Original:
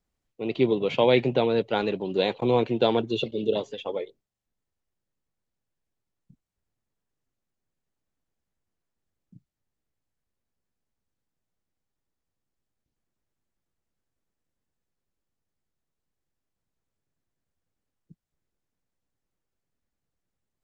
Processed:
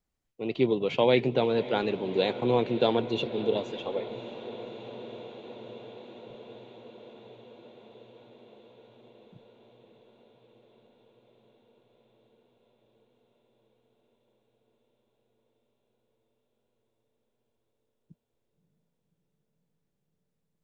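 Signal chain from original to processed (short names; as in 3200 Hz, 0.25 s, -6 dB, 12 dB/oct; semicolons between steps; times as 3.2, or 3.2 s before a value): diffused feedback echo 0.582 s, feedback 79%, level -15 dB; gain -2.5 dB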